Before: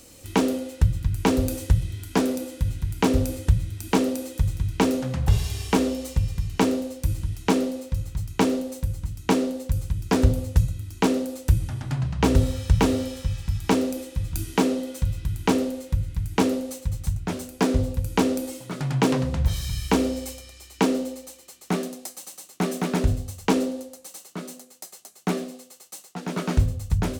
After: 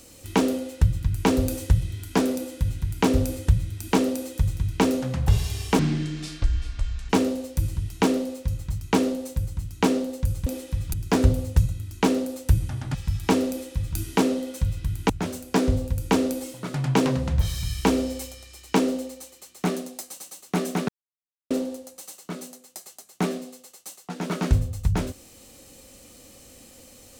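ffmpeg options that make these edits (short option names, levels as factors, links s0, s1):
-filter_complex "[0:a]asplit=9[s0][s1][s2][s3][s4][s5][s6][s7][s8];[s0]atrim=end=5.794[s9];[s1]atrim=start=5.79:end=6.56,asetpts=PTS-STARTPTS,asetrate=26019,aresample=44100,atrim=end_sample=57554,asetpts=PTS-STARTPTS[s10];[s2]atrim=start=6.556:end=9.932[s11];[s3]atrim=start=13.898:end=14.372[s12];[s4]atrim=start=9.928:end=11.942[s13];[s5]atrim=start=13.348:end=15.502[s14];[s6]atrim=start=17.158:end=22.95,asetpts=PTS-STARTPTS,afade=t=out:st=5.788:d=0.004:c=hsin[s15];[s7]atrim=start=22.95:end=23.57,asetpts=PTS-STARTPTS,volume=0[s16];[s8]atrim=start=23.57,asetpts=PTS-STARTPTS,afade=t=in:d=0.004:c=hsin[s17];[s9][s10]acrossfade=d=0.004:c1=hsin:c2=hsin[s18];[s18][s11]acrossfade=d=0.004:c1=hsin:c2=hsin[s19];[s19][s12]acrossfade=d=0.004:c1=hsin:c2=hsin[s20];[s20][s13]acrossfade=d=0.004:c1=hsin:c2=hsin[s21];[s21][s14]acrossfade=d=0.004:c1=hsin:c2=hsin[s22];[s15][s16][s17]concat=n=3:v=0:a=1[s23];[s22][s23]acrossfade=d=0.004:c1=hsin:c2=hsin"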